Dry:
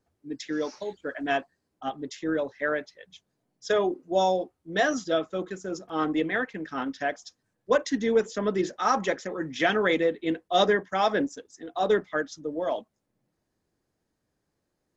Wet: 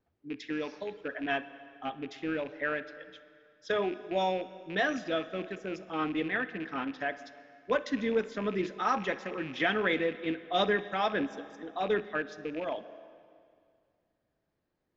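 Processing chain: rattle on loud lows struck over -40 dBFS, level -32 dBFS; Chebyshev low-pass 3.1 kHz, order 2; on a send at -14.5 dB: reverberation RT60 2.2 s, pre-delay 38 ms; on the sum: dynamic bell 570 Hz, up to -4 dB, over -33 dBFS, Q 0.71; trim -2 dB

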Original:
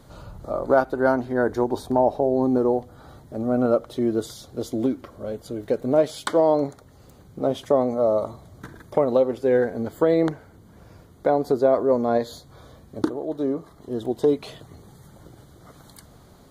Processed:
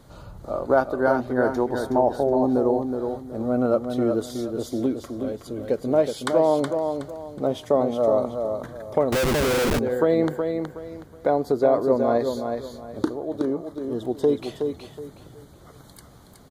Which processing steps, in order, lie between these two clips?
feedback delay 370 ms, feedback 28%, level -6 dB; 9.12–9.79 s: Schmitt trigger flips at -30 dBFS; trim -1 dB

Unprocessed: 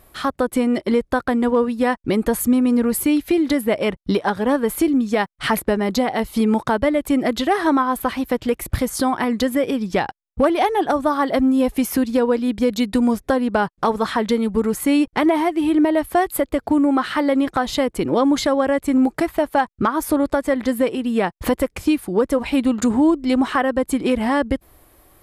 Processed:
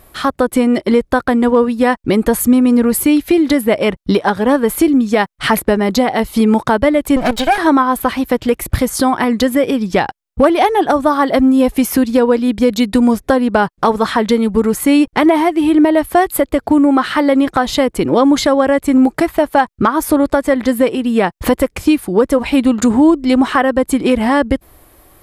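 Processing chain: 7.16–7.58 s: comb filter that takes the minimum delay 1.3 ms; trim +6 dB

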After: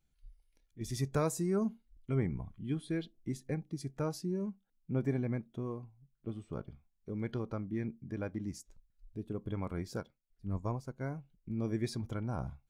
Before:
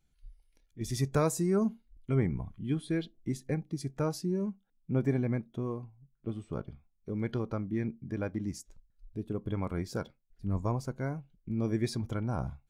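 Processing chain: 10.00–11.01 s: upward expansion 1.5:1, over -41 dBFS; trim -4 dB

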